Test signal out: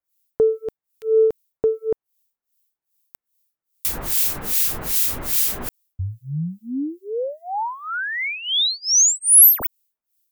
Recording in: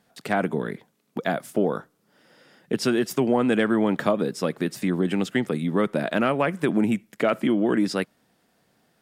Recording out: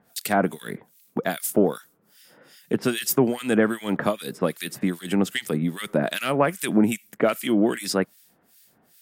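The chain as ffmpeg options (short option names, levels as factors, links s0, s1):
-filter_complex "[0:a]aemphasis=mode=production:type=75fm,acontrast=22,acrossover=split=1800[s0][s1];[s0]aeval=exprs='val(0)*(1-1/2+1/2*cos(2*PI*2.5*n/s))':c=same[s2];[s1]aeval=exprs='val(0)*(1-1/2-1/2*cos(2*PI*2.5*n/s))':c=same[s3];[s2][s3]amix=inputs=2:normalize=0"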